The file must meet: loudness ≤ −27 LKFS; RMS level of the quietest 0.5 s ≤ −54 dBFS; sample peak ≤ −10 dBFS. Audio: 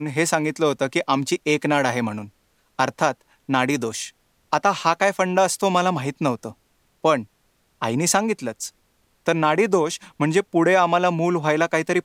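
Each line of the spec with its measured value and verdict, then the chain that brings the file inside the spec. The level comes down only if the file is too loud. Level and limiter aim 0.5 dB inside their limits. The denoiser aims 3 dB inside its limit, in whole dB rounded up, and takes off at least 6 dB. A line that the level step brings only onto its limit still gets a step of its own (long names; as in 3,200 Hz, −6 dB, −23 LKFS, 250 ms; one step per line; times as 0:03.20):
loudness −21.5 LKFS: out of spec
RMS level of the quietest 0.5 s −65 dBFS: in spec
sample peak −3.5 dBFS: out of spec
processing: level −6 dB
brickwall limiter −10.5 dBFS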